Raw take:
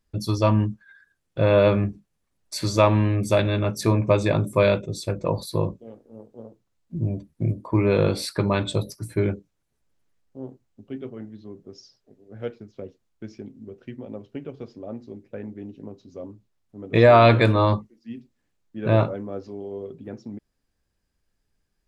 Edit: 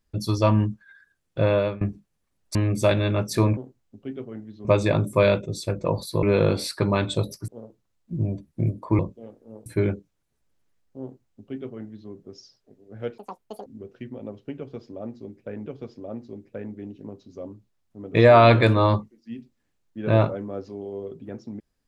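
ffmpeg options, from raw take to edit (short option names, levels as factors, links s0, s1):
-filter_complex "[0:a]asplit=12[s0][s1][s2][s3][s4][s5][s6][s7][s8][s9][s10][s11];[s0]atrim=end=1.81,asetpts=PTS-STARTPTS,afade=t=out:st=1.39:d=0.42:silence=0.0749894[s12];[s1]atrim=start=1.81:end=2.552,asetpts=PTS-STARTPTS,afade=t=in:d=0.004:c=hsin:silence=0.0749894[s13];[s2]atrim=start=3.028:end=4.052[s14];[s3]atrim=start=10.418:end=11.502[s15];[s4]atrim=start=4.048:end=5.632[s16];[s5]atrim=start=7.808:end=9.062[s17];[s6]atrim=start=6.298:end=7.812[s18];[s7]atrim=start=5.628:end=6.302[s19];[s8]atrim=start=9.058:end=12.584[s20];[s9]atrim=start=12.58:end=13.53,asetpts=PTS-STARTPTS,asetrate=86877,aresample=44100,atrim=end_sample=21266,asetpts=PTS-STARTPTS[s21];[s10]atrim=start=13.526:end=15.532[s22];[s11]atrim=start=14.448[s23];[s12][s13]concat=n=2:v=0:a=1[s24];[s24][s14]acrossfade=d=0.004:c1=hsin:c2=hsin[s25];[s25][s15]acrossfade=d=0.004:c1=hsin:c2=hsin[s26];[s26][s16]acrossfade=d=0.004:c1=hsin:c2=hsin[s27];[s27][s17]acrossfade=d=0.004:c1=hsin:c2=hsin[s28];[s28][s18]acrossfade=d=0.004:c1=hsin:c2=hsin[s29];[s29][s19]acrossfade=d=0.004:c1=hsin:c2=hsin[s30];[s30][s20]acrossfade=d=0.004:c1=hsin:c2=hsin[s31];[s31][s21]acrossfade=d=0.004:c1=hsin:c2=hsin[s32];[s32][s22]acrossfade=d=0.004:c1=hsin:c2=hsin[s33];[s33][s23]acrossfade=d=0.004:c1=hsin:c2=hsin"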